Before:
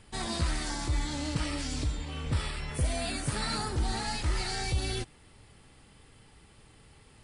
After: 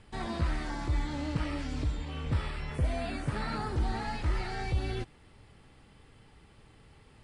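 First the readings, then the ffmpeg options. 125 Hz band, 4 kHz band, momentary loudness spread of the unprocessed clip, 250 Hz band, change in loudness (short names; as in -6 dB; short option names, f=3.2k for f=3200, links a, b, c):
0.0 dB, -9.0 dB, 3 LU, 0.0 dB, -1.5 dB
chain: -filter_complex "[0:a]acrossover=split=2900[a][b];[b]acompressor=threshold=-45dB:ratio=4:attack=1:release=60[c];[a][c]amix=inputs=2:normalize=0,aemphasis=mode=reproduction:type=50kf"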